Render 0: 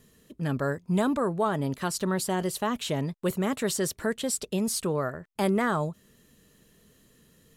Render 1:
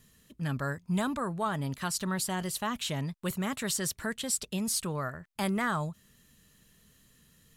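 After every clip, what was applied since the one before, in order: bell 420 Hz -10.5 dB 1.7 oct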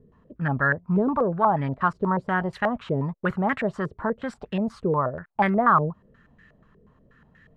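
stepped low-pass 8.3 Hz 440–1800 Hz; gain +6 dB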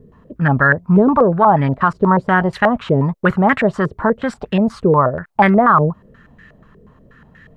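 maximiser +11.5 dB; gain -1 dB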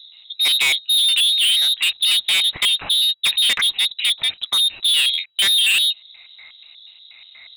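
inverted band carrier 3900 Hz; hard clip -16 dBFS, distortion -7 dB; gain +1.5 dB

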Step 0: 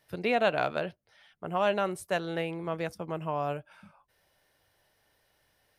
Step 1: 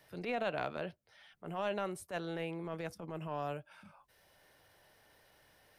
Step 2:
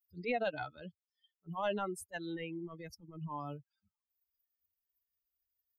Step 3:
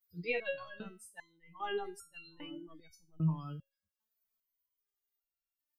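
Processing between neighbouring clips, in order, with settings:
transient shaper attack -11 dB, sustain +1 dB; three-band squash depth 40%; gain -6 dB
per-bin expansion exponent 3; gain +5.5 dB
reverse echo 0.969 s -9 dB; dynamic EQ 630 Hz, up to -6 dB, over -47 dBFS, Q 1.2; stepped resonator 2.5 Hz 160–1400 Hz; gain +15 dB

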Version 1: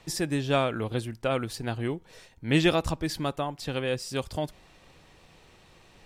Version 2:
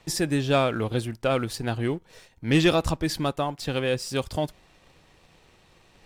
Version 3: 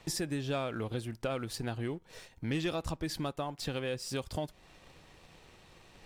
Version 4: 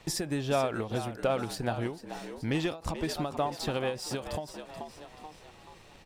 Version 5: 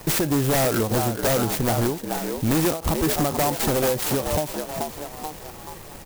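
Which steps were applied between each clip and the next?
sample leveller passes 1
compressor 3:1, threshold -35 dBFS, peak gain reduction 14.5 dB
dynamic EQ 760 Hz, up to +7 dB, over -49 dBFS, Q 1.1; frequency-shifting echo 0.432 s, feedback 44%, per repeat +78 Hz, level -11 dB; ending taper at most 150 dB/s; gain +2.5 dB
sine folder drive 10 dB, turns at -16.5 dBFS; clock jitter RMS 0.095 ms

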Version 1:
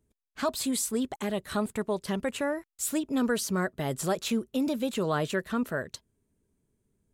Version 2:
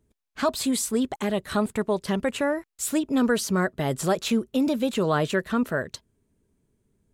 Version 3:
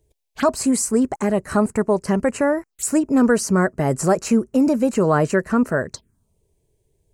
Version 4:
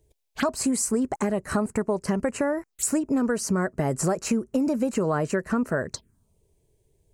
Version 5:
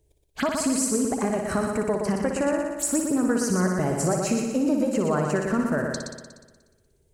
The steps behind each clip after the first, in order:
high shelf 7100 Hz -5 dB; gain +5 dB
envelope phaser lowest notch 220 Hz, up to 3500 Hz, full sweep at -27.5 dBFS; gain +6.5 dB
compressor, threshold -21 dBFS, peak gain reduction 9.5 dB
multi-head echo 60 ms, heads first and second, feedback 60%, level -7 dB; gain -1 dB

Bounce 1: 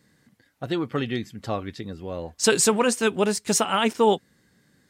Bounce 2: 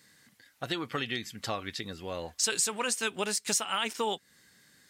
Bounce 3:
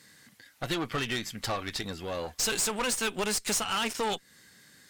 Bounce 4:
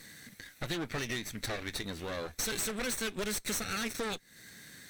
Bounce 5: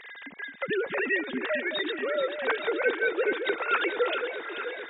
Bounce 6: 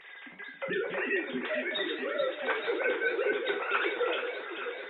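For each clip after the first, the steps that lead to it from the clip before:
tilt shelf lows -7.5 dB; compressor 3:1, threshold -30 dBFS, peak gain reduction 15 dB
tube stage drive 32 dB, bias 0.6; gain +7.5 dB
minimum comb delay 0.5 ms; compressor 2:1, threshold -48 dBFS, peak gain reduction 11.5 dB; gain +6 dB
sine-wave speech; echo with dull and thin repeats by turns 0.217 s, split 890 Hz, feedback 83%, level -7 dB; gain +7 dB
reverb, pre-delay 3 ms, DRR 1 dB; flange 1.8 Hz, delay 6.5 ms, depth 6.8 ms, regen +63%; gain -1 dB

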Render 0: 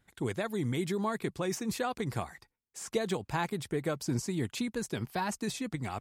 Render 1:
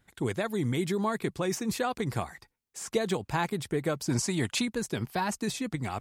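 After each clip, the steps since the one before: spectral gain 4.1–4.65, 530–11000 Hz +6 dB; reverse; upward compressor, threshold -53 dBFS; reverse; gain +3 dB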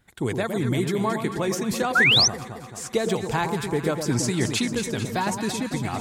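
on a send: echo with dull and thin repeats by turns 0.111 s, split 1100 Hz, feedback 77%, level -6 dB; on the sum: painted sound rise, 1.95–2.28, 1300–6300 Hz -21 dBFS; gain +4 dB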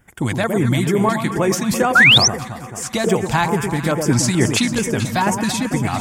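LFO notch square 2.3 Hz 420–4000 Hz; gain +8 dB

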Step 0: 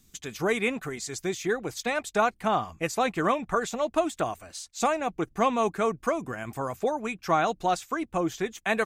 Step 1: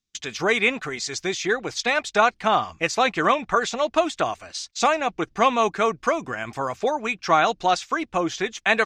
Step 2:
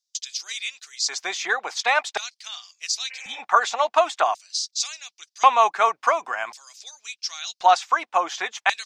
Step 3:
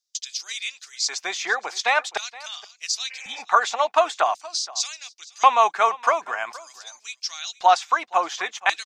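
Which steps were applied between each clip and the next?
gate -48 dBFS, range -27 dB; EQ curve 170 Hz 0 dB, 3200 Hz +10 dB, 5500 Hz +10 dB, 13000 Hz -14 dB
LFO high-pass square 0.46 Hz 840–4900 Hz; spectral repair 3.13–3.37, 300–3000 Hz both
echo 0.471 s -20.5 dB

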